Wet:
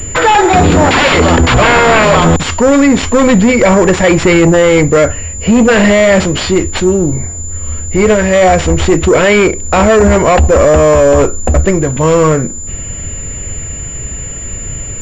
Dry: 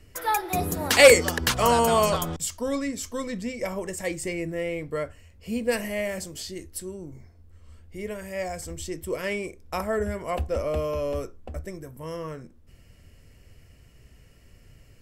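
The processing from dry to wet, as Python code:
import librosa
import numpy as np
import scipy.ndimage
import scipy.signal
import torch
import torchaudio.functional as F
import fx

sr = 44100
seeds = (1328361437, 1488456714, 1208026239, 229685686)

p1 = fx.over_compress(x, sr, threshold_db=-31.0, ratio=-0.5)
p2 = x + F.gain(torch.from_numpy(p1), -2.0).numpy()
p3 = fx.wow_flutter(p2, sr, seeds[0], rate_hz=2.1, depth_cents=24.0)
p4 = fx.fold_sine(p3, sr, drive_db=18, ceiling_db=-2.0)
p5 = fx.pwm(p4, sr, carrier_hz=7100.0)
y = F.gain(torch.from_numpy(p5), -1.0).numpy()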